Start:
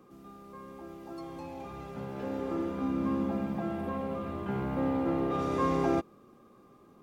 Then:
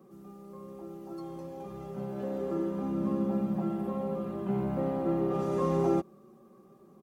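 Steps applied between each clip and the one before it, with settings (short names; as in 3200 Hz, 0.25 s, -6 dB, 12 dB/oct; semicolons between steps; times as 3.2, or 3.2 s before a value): HPF 63 Hz; bell 2800 Hz -8.5 dB 2.2 oct; comb 5.3 ms, depth 97%; gain -1 dB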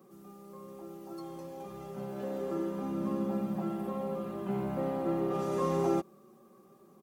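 tilt +1.5 dB/oct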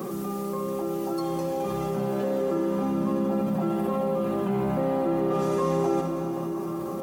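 flutter echo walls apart 11.6 m, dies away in 0.24 s; on a send at -16 dB: reverb RT60 4.2 s, pre-delay 48 ms; on the sum: fast leveller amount 70%; gain +3 dB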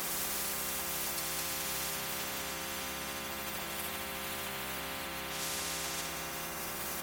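analogue delay 73 ms, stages 1024, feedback 76%, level -6.5 dB; spectral compressor 10:1; gain -9 dB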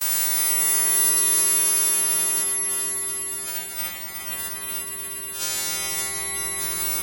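frequency quantiser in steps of 2 st; gate -30 dBFS, range -30 dB; swelling echo 0.12 s, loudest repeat 5, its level -6 dB; gain +3 dB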